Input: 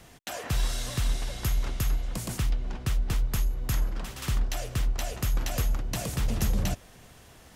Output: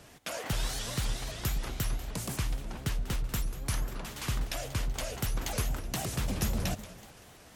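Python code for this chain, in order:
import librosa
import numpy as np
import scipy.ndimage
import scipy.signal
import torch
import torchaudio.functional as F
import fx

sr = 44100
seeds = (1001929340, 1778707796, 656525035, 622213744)

y = fx.low_shelf(x, sr, hz=81.0, db=-7.0)
y = fx.echo_split(y, sr, split_hz=310.0, low_ms=115, high_ms=188, feedback_pct=52, wet_db=-14.5)
y = fx.vibrato_shape(y, sr, shape='saw_up', rate_hz=3.8, depth_cents=250.0)
y = y * 10.0 ** (-1.0 / 20.0)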